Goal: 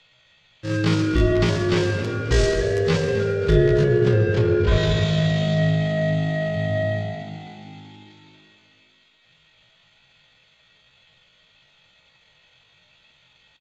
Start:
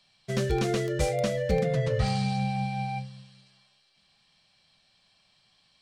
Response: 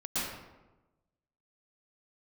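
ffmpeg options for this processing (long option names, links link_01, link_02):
-filter_complex "[0:a]asetrate=18846,aresample=44100,lowpass=3300,bandreject=frequency=50:width_type=h:width=6,bandreject=frequency=100:width_type=h:width=6,bandreject=frequency=150:width_type=h:width=6,bandreject=frequency=200:width_type=h:width=6,bandreject=frequency=250:width_type=h:width=6,bandreject=frequency=300:width_type=h:width=6,bandreject=frequency=350:width_type=h:width=6,bandreject=frequency=400:width_type=h:width=6,bandreject=frequency=450:width_type=h:width=6,bandreject=frequency=500:width_type=h:width=6,asetrate=83250,aresample=44100,atempo=0.529732,asplit=6[link_01][link_02][link_03][link_04][link_05][link_06];[link_02]adelay=269,afreqshift=51,volume=-13.5dB[link_07];[link_03]adelay=538,afreqshift=102,volume=-19dB[link_08];[link_04]adelay=807,afreqshift=153,volume=-24.5dB[link_09];[link_05]adelay=1076,afreqshift=204,volume=-30dB[link_10];[link_06]adelay=1345,afreqshift=255,volume=-35.6dB[link_11];[link_01][link_07][link_08][link_09][link_10][link_11]amix=inputs=6:normalize=0,asplit=2[link_12][link_13];[1:a]atrim=start_sample=2205[link_14];[link_13][link_14]afir=irnorm=-1:irlink=0,volume=-16.5dB[link_15];[link_12][link_15]amix=inputs=2:normalize=0,volume=7.5dB"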